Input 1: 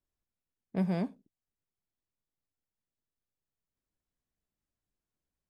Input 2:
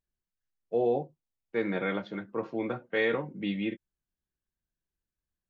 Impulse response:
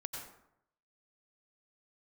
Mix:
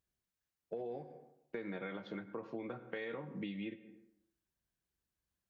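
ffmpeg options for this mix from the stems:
-filter_complex "[0:a]highpass=440,volume=-11.5dB,asplit=2[link_01][link_02];[link_02]volume=-12.5dB[link_03];[1:a]highpass=49,alimiter=limit=-24dB:level=0:latency=1:release=166,volume=0.5dB,asplit=3[link_04][link_05][link_06];[link_05]volume=-13.5dB[link_07];[link_06]apad=whole_len=242212[link_08];[link_01][link_08]sidechaincompress=threshold=-34dB:ratio=8:attack=16:release=1450[link_09];[2:a]atrim=start_sample=2205[link_10];[link_03][link_07]amix=inputs=2:normalize=0[link_11];[link_11][link_10]afir=irnorm=-1:irlink=0[link_12];[link_09][link_04][link_12]amix=inputs=3:normalize=0,acompressor=threshold=-40dB:ratio=6"

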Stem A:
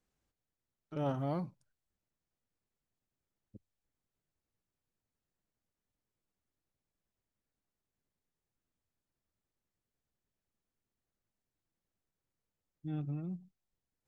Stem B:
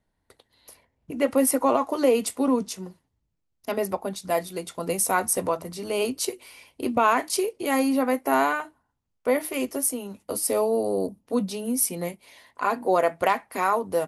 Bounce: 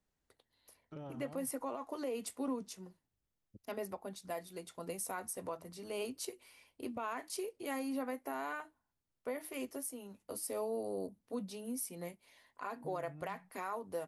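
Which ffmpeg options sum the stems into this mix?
ffmpeg -i stem1.wav -i stem2.wav -filter_complex "[0:a]acompressor=threshold=-42dB:ratio=6,volume=-3dB[link_01];[1:a]equalizer=frequency=1700:width=5.9:gain=2.5,volume=-14dB[link_02];[link_01][link_02]amix=inputs=2:normalize=0,alimiter=level_in=5.5dB:limit=-24dB:level=0:latency=1:release=174,volume=-5.5dB" out.wav

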